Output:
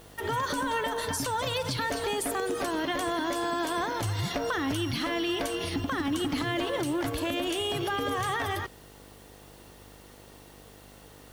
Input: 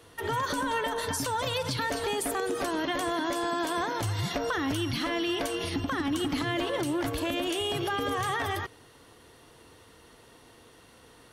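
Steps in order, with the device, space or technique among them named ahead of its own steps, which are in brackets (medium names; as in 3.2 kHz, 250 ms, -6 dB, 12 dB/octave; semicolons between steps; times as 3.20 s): video cassette with head-switching buzz (mains buzz 50 Hz, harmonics 17, -54 dBFS -3 dB/octave; white noise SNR 28 dB)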